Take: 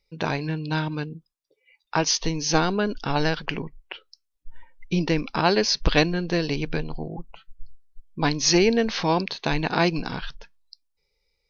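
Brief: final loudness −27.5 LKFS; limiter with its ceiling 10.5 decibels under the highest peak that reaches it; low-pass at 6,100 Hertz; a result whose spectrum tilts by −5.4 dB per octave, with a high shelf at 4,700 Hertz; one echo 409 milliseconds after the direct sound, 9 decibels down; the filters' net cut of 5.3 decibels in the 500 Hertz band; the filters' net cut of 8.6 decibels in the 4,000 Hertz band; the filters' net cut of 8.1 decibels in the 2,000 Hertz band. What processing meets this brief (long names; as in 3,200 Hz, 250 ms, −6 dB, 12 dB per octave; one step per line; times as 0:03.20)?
low-pass filter 6,100 Hz
parametric band 500 Hz −6.5 dB
parametric band 2,000 Hz −8.5 dB
parametric band 4,000 Hz −5 dB
high-shelf EQ 4,700 Hz −4.5 dB
brickwall limiter −17 dBFS
single-tap delay 409 ms −9 dB
level +2.5 dB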